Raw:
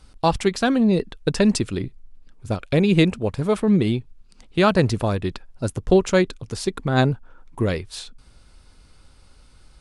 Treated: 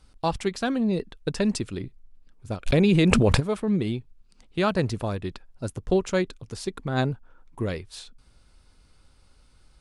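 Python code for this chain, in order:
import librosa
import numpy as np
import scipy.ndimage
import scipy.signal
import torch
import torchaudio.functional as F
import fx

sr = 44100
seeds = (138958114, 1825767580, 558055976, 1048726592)

y = fx.env_flatten(x, sr, amount_pct=100, at=(2.66, 3.39), fade=0.02)
y = F.gain(torch.from_numpy(y), -6.5).numpy()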